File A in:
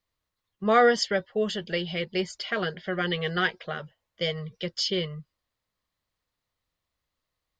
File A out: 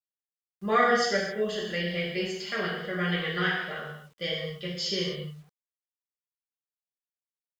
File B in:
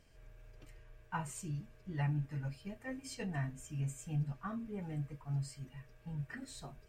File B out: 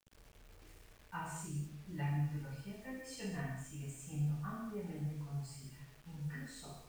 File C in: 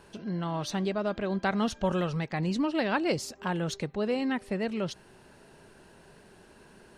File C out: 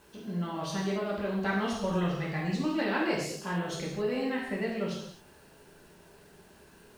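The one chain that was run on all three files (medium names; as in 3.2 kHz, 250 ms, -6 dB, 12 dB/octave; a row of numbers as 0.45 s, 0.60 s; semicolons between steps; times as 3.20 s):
gated-style reverb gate 300 ms falling, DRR -5.5 dB; dynamic bell 1.9 kHz, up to +5 dB, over -43 dBFS, Q 4.5; bit crusher 9-bit; trim -8 dB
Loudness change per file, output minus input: -1.5 LU, -1.5 LU, -1.5 LU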